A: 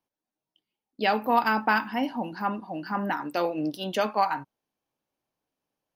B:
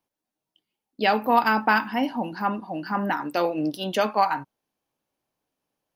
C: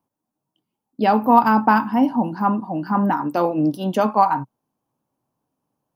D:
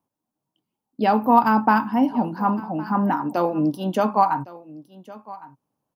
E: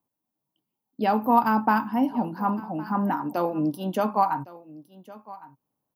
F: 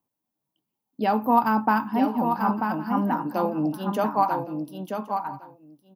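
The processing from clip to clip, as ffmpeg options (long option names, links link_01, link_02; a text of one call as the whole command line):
ffmpeg -i in.wav -af "equalizer=frequency=11000:width=7.4:gain=3.5,volume=3dB" out.wav
ffmpeg -i in.wav -af "equalizer=frequency=125:width_type=o:width=1:gain=11,equalizer=frequency=250:width_type=o:width=1:gain=7,equalizer=frequency=1000:width_type=o:width=1:gain=8,equalizer=frequency=2000:width_type=o:width=1:gain=-7,equalizer=frequency=4000:width_type=o:width=1:gain=-6" out.wav
ffmpeg -i in.wav -af "aecho=1:1:1110:0.106,volume=-2dB" out.wav
ffmpeg -i in.wav -af "aexciter=amount=2.7:drive=4:freq=11000,volume=-4dB" out.wav
ffmpeg -i in.wav -af "aecho=1:1:939:0.501" out.wav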